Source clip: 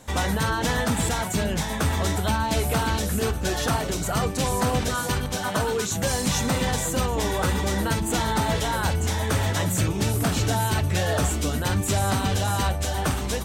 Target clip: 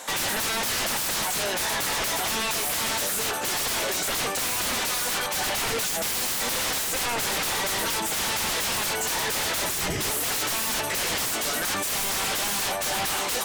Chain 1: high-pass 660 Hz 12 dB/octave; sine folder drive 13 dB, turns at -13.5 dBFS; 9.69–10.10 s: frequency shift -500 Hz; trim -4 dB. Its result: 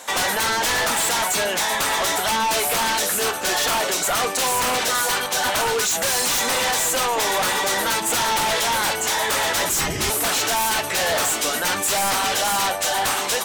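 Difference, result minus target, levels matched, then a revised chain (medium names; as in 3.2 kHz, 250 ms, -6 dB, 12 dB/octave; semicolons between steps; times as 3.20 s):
sine folder: distortion -13 dB
high-pass 660 Hz 12 dB/octave; sine folder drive 13 dB, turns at -19.5 dBFS; 9.69–10.10 s: frequency shift -500 Hz; trim -4 dB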